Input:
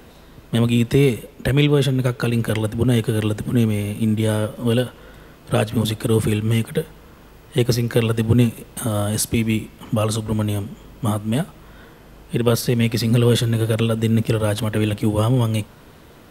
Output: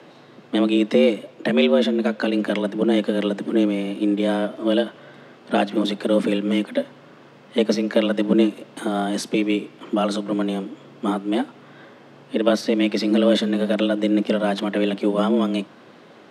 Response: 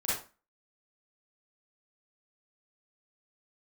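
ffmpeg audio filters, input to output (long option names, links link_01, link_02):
-af "afreqshift=91,highpass=210,lowpass=4700"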